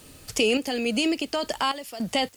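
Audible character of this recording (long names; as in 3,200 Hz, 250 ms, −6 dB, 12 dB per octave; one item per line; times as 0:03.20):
sample-and-hold tremolo, depth 90%
a quantiser's noise floor 10 bits, dither triangular
AC-3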